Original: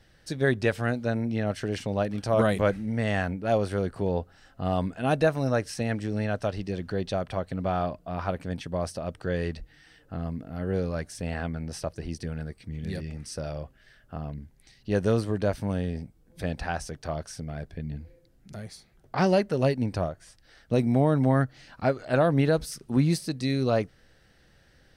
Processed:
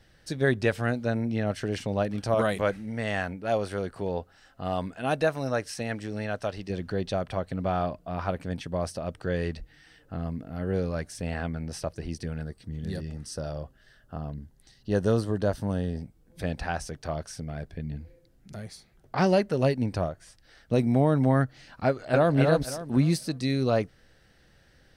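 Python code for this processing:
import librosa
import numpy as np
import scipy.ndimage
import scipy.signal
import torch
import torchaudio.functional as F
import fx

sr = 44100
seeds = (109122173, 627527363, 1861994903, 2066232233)

y = fx.low_shelf(x, sr, hz=370.0, db=-6.5, at=(2.34, 6.7))
y = fx.peak_eq(y, sr, hz=2300.0, db=-12.0, octaves=0.3, at=(12.44, 16.01))
y = fx.echo_throw(y, sr, start_s=21.86, length_s=0.49, ms=270, feedback_pct=30, wet_db=-4.0)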